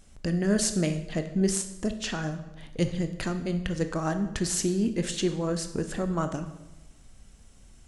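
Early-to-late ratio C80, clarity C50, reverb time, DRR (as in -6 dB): 13.0 dB, 11.0 dB, 0.95 s, 8.0 dB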